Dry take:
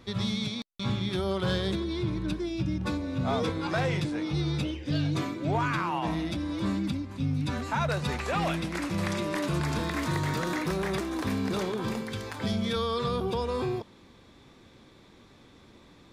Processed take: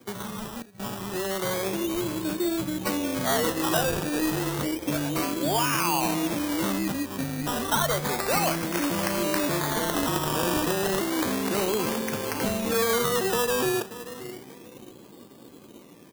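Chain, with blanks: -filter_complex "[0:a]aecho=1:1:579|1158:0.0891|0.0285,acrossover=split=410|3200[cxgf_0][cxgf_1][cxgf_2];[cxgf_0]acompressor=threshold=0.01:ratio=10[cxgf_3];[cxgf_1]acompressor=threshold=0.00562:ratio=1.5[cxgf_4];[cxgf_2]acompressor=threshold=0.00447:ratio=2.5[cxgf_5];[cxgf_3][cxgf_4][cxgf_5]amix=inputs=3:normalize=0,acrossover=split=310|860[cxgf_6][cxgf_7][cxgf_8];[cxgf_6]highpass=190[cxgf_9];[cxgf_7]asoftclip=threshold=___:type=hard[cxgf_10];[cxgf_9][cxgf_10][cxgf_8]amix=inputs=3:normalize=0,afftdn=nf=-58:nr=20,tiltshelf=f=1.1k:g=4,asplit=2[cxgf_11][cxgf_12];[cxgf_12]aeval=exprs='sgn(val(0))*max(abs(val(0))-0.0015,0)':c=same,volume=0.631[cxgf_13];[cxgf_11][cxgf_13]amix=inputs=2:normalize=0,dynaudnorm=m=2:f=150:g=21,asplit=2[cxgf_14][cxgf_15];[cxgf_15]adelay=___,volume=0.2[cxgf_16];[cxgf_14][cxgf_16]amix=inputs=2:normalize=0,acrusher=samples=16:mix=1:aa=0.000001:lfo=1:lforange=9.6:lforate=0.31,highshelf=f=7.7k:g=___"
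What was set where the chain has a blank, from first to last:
0.0119, 35, 9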